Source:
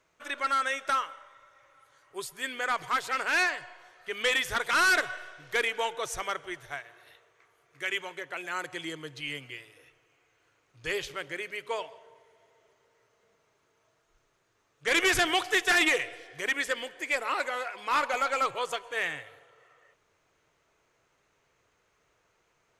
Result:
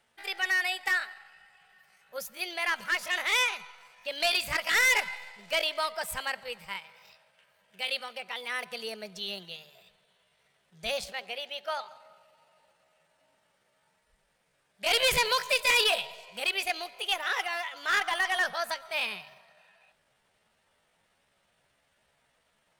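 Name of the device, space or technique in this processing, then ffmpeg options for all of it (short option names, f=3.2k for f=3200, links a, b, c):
chipmunk voice: -filter_complex "[0:a]asplit=3[a][b][c];[a]afade=t=out:st=11.12:d=0.02[d];[b]bass=f=250:g=-7,treble=f=4k:g=-5,afade=t=in:st=11.12:d=0.02,afade=t=out:st=11.89:d=0.02[e];[c]afade=t=in:st=11.89:d=0.02[f];[d][e][f]amix=inputs=3:normalize=0,asetrate=60591,aresample=44100,atempo=0.727827"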